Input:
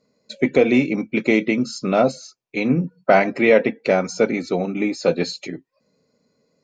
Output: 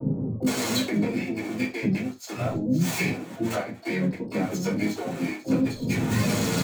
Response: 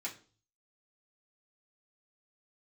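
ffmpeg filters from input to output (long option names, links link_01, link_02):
-filter_complex "[0:a]aeval=exprs='val(0)+0.5*0.075*sgn(val(0))':channel_layout=same,acompressor=threshold=-28dB:ratio=16,flanger=delay=6.8:depth=4.4:regen=40:speed=0.37:shape=triangular,bass=frequency=250:gain=9,treble=frequency=4000:gain=2,agate=range=-49dB:threshold=-33dB:ratio=16:detection=peak,lowshelf=frequency=120:gain=10,bandreject=frequency=5000:width=8.6[link_01];[1:a]atrim=start_sample=2205,afade=type=out:start_time=0.15:duration=0.01,atrim=end_sample=7056[link_02];[link_01][link_02]afir=irnorm=-1:irlink=0,acontrast=67,acrossover=split=370[link_03][link_04];[link_04]adelay=460[link_05];[link_03][link_05]amix=inputs=2:normalize=0,asplit=3[link_06][link_07][link_08];[link_07]asetrate=35002,aresample=44100,atempo=1.25992,volume=-10dB[link_09];[link_08]asetrate=88200,aresample=44100,atempo=0.5,volume=-14dB[link_10];[link_06][link_09][link_10]amix=inputs=3:normalize=0"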